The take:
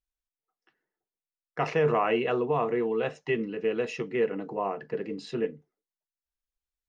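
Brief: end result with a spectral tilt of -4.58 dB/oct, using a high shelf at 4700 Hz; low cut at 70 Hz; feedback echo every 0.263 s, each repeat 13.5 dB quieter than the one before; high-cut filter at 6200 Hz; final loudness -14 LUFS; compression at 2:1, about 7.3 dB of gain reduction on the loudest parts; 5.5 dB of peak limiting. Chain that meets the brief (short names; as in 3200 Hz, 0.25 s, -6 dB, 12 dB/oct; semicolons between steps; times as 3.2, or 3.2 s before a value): HPF 70 Hz; LPF 6200 Hz; high shelf 4700 Hz +3.5 dB; compressor 2:1, threshold -34 dBFS; limiter -25.5 dBFS; feedback echo 0.263 s, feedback 21%, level -13.5 dB; gain +22 dB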